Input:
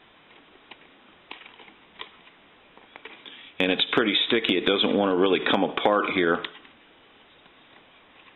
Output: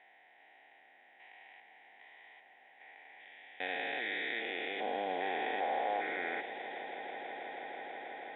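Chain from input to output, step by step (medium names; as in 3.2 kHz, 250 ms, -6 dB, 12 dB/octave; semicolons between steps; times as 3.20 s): spectrogram pixelated in time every 400 ms; two resonant band-passes 1.2 kHz, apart 1.3 oct; echo with a slow build-up 162 ms, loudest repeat 8, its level -18 dB; trim +2 dB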